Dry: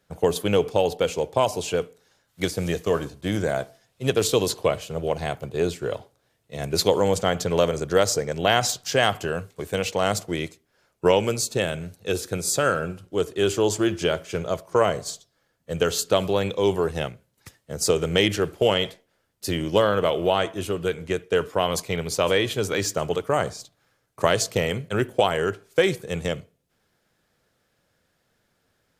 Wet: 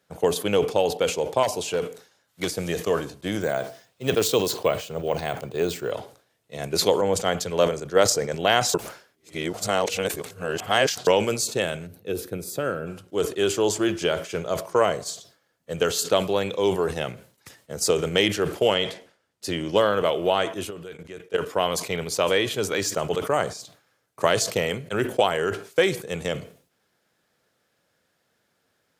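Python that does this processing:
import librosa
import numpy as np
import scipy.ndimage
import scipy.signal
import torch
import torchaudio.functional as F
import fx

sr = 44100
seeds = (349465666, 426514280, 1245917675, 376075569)

y = fx.overload_stage(x, sr, gain_db=17.5, at=(1.43, 2.49))
y = fx.resample_bad(y, sr, factor=2, down='filtered', up='hold', at=(3.41, 5.91))
y = fx.band_widen(y, sr, depth_pct=100, at=(7.01, 8.1))
y = fx.curve_eq(y, sr, hz=(340.0, 890.0, 2600.0, 7300.0, 14000.0), db=(0, -8, -8, -15, -1), at=(11.86, 12.86), fade=0.02)
y = fx.bessel_lowpass(y, sr, hz=8900.0, order=2, at=(18.75, 19.78))
y = fx.level_steps(y, sr, step_db=18, at=(20.69, 21.45), fade=0.02)
y = fx.edit(y, sr, fx.reverse_span(start_s=8.74, length_s=2.33), tone=tone)
y = fx.highpass(y, sr, hz=200.0, slope=6)
y = fx.sustainer(y, sr, db_per_s=130.0)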